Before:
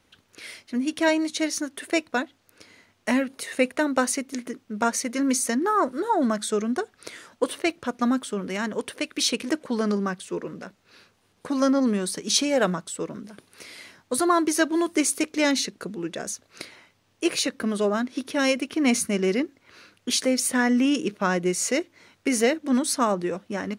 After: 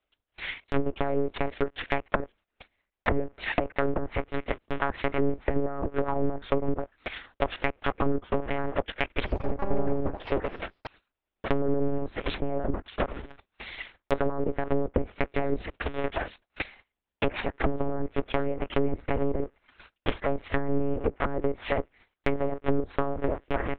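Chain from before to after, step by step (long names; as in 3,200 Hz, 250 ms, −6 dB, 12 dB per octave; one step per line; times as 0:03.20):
sub-harmonics by changed cycles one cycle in 2, muted
leveller curve on the samples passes 1
one-pitch LPC vocoder at 8 kHz 140 Hz
parametric band 140 Hz −10 dB 0.88 octaves
brickwall limiter −14.5 dBFS, peak gain reduction 10.5 dB
0:09.10–0:11.47: delay with pitch and tempo change per echo 94 ms, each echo +6 semitones, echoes 2
noise gate −54 dBFS, range −15 dB
transient designer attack +3 dB, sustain −4 dB
dynamic equaliser 2,300 Hz, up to +5 dB, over −48 dBFS, Q 0.96
treble cut that deepens with the level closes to 470 Hz, closed at −21 dBFS
level +2 dB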